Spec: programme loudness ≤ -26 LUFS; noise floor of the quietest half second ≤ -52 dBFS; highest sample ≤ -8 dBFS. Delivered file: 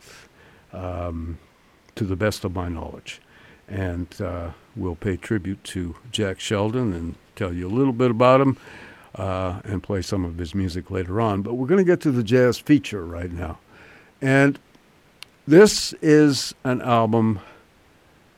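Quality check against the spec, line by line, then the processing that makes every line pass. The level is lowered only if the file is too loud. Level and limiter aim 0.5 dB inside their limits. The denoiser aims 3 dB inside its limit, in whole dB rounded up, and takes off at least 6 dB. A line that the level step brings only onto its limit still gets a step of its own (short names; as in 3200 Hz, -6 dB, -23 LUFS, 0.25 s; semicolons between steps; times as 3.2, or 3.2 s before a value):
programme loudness -21.5 LUFS: fail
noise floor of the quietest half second -56 dBFS: OK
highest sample -1.5 dBFS: fail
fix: gain -5 dB; limiter -8.5 dBFS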